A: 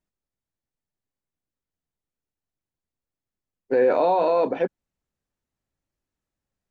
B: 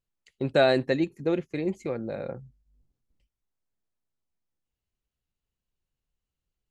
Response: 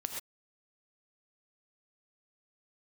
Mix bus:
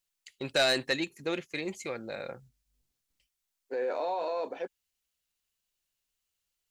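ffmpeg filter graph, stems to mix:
-filter_complex "[0:a]bass=frequency=250:gain=-10,treble=frequency=4000:gain=12,volume=0.5dB[link_01];[1:a]tiltshelf=frequency=1300:gain=-8.5,volume=2dB,asplit=2[link_02][link_03];[link_03]apad=whole_len=295545[link_04];[link_01][link_04]sidechaingate=range=-11dB:threshold=-51dB:ratio=16:detection=peak[link_05];[link_05][link_02]amix=inputs=2:normalize=0,asoftclip=type=tanh:threshold=-18dB,lowshelf=frequency=280:gain=-5.5"

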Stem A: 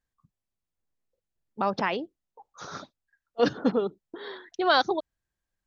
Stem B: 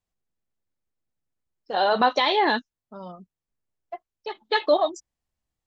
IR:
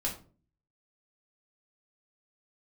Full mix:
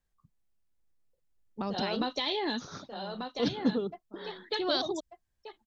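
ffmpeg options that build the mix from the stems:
-filter_complex "[0:a]volume=-1.5dB[link_01];[1:a]volume=-4dB,asplit=2[link_02][link_03];[link_03]volume=-8dB,aecho=0:1:1190:1[link_04];[link_01][link_02][link_04]amix=inputs=3:normalize=0,lowshelf=frequency=66:gain=8.5,acrossover=split=370|3000[link_05][link_06][link_07];[link_06]acompressor=threshold=-47dB:ratio=2[link_08];[link_05][link_08][link_07]amix=inputs=3:normalize=0"

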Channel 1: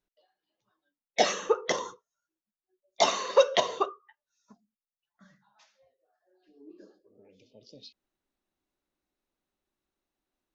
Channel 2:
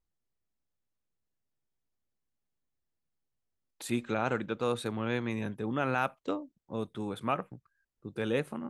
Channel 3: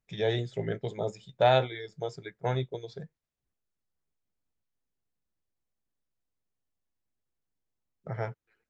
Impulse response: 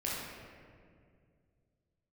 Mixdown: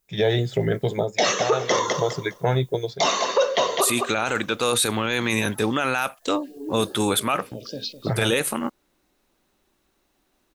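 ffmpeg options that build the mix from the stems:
-filter_complex "[0:a]volume=1.5dB,asplit=2[link_01][link_02];[link_02]volume=-12dB[link_03];[1:a]equalizer=frequency=160:width=1.5:gain=-6.5,crystalizer=i=7:c=0,volume=-1.5dB[link_04];[2:a]acompressor=threshold=-34dB:ratio=3,volume=-1dB[link_05];[link_03]aecho=0:1:205|410|615|820:1|0.22|0.0484|0.0106[link_06];[link_01][link_04][link_05][link_06]amix=inputs=4:normalize=0,dynaudnorm=framelen=110:gausssize=3:maxgain=16.5dB,alimiter=limit=-10.5dB:level=0:latency=1:release=12"

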